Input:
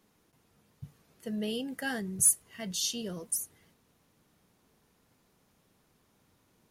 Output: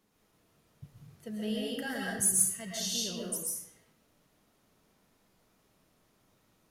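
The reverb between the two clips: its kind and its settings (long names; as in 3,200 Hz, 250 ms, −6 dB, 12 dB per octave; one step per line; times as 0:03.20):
comb and all-pass reverb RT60 0.77 s, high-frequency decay 0.85×, pre-delay 90 ms, DRR −3.5 dB
level −4.5 dB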